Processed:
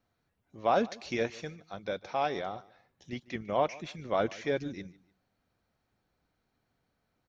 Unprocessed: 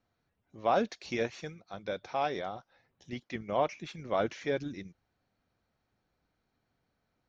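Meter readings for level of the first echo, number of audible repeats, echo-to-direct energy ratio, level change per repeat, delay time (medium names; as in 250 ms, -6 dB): -21.5 dB, 2, -21.0 dB, -9.5 dB, 149 ms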